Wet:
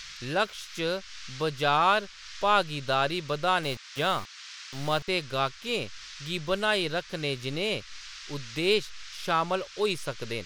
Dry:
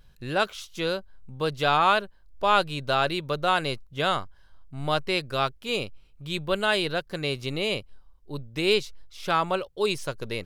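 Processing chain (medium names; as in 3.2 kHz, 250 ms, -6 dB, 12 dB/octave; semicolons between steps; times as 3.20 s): 3.63–5.08 s: small samples zeroed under -36 dBFS; band noise 1.2–5.9 kHz -47 dBFS; tape noise reduction on one side only encoder only; trim -2 dB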